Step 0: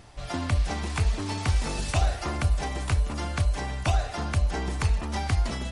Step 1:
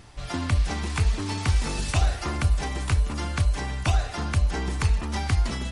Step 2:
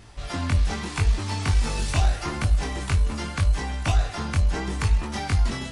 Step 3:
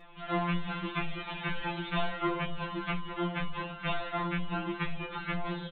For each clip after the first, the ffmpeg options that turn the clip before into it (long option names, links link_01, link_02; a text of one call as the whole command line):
ffmpeg -i in.wav -af "equalizer=frequency=640:width_type=o:width=0.72:gain=-5,volume=2dB" out.wav
ffmpeg -i in.wav -filter_complex "[0:a]flanger=delay=19:depth=3.7:speed=0.8,asplit=2[link_01][link_02];[link_02]aeval=exprs='clip(val(0),-1,0.0376)':channel_layout=same,volume=-8dB[link_03];[link_01][link_03]amix=inputs=2:normalize=0,volume=1dB" out.wav
ffmpeg -i in.wav -af "aresample=8000,aresample=44100,afftfilt=real='re*2.83*eq(mod(b,8),0)':imag='im*2.83*eq(mod(b,8),0)':win_size=2048:overlap=0.75" out.wav